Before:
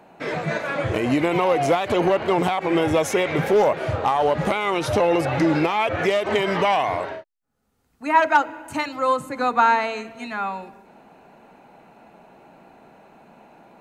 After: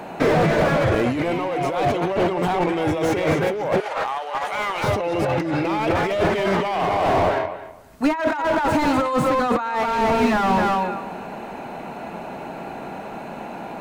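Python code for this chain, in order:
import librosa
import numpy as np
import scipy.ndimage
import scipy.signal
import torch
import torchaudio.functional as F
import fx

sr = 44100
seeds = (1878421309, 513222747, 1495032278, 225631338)

y = fx.leveller(x, sr, passes=1, at=(1.14, 1.62))
y = fx.echo_filtered(y, sr, ms=256, feedback_pct=18, hz=4100.0, wet_db=-5.5)
y = fx.over_compress(y, sr, threshold_db=-28.0, ratio=-1.0)
y = fx.highpass(y, sr, hz=910.0, slope=12, at=(3.8, 4.84))
y = fx.slew_limit(y, sr, full_power_hz=44.0)
y = F.gain(torch.from_numpy(y), 8.5).numpy()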